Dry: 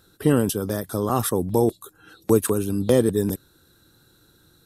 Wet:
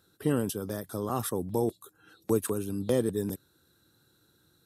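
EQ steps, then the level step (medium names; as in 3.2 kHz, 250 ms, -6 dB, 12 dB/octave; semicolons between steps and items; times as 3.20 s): high-pass 73 Hz; -8.5 dB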